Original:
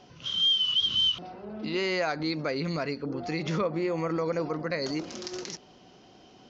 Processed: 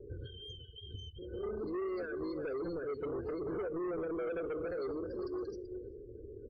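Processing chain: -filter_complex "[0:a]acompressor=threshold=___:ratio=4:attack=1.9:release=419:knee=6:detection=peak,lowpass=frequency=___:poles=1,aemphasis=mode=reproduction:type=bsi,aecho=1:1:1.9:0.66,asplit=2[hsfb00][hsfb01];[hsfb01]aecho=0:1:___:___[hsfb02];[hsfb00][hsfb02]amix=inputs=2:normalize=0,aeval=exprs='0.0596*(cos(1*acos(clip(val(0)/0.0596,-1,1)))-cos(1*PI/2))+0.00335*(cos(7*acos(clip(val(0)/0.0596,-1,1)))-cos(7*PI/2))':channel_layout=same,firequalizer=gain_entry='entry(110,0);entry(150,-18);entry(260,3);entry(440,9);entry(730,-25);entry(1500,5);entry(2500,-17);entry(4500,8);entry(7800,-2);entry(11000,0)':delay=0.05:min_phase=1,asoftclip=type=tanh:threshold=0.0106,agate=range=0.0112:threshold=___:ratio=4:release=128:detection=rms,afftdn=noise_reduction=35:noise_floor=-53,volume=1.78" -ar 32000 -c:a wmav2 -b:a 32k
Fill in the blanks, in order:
0.0141, 1500, 384, 0.376, 0.00126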